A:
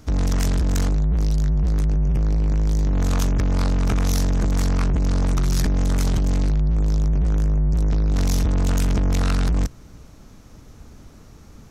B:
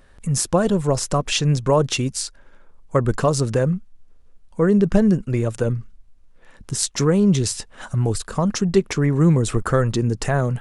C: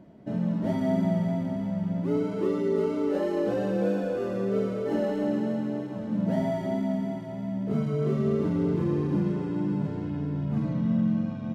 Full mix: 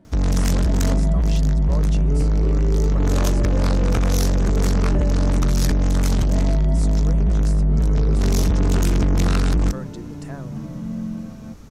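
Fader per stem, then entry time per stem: +1.5, -17.0, -3.5 dB; 0.05, 0.00, 0.00 s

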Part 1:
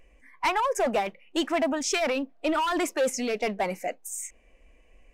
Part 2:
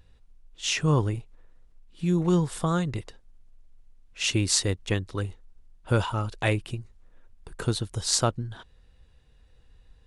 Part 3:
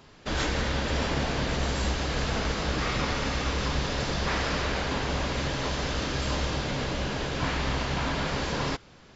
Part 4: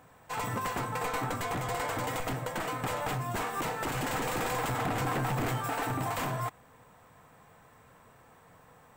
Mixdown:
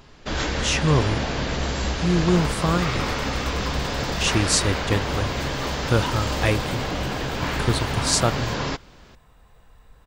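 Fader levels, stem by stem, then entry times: -19.5, +3.0, +2.5, -3.5 dB; 0.25, 0.00, 0.00, 2.05 s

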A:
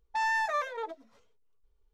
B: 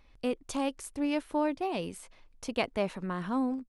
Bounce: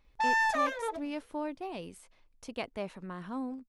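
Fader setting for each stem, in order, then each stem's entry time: +1.5, -7.0 dB; 0.05, 0.00 s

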